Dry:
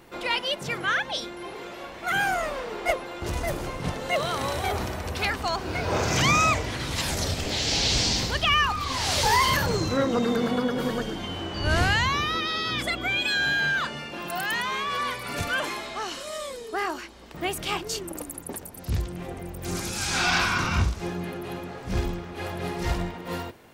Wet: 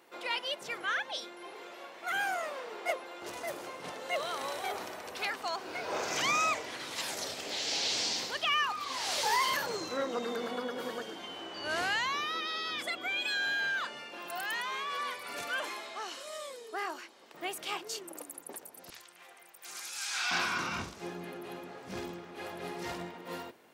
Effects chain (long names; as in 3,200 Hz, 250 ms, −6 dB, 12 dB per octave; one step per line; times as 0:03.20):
high-pass filter 380 Hz 12 dB per octave, from 0:18.90 1,200 Hz, from 0:20.31 230 Hz
level −7.5 dB